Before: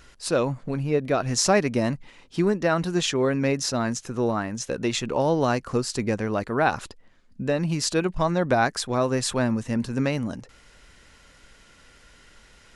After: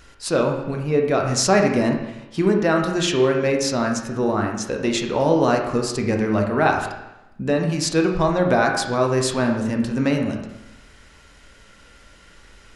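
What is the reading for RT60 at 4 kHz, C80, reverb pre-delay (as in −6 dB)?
0.90 s, 7.5 dB, 18 ms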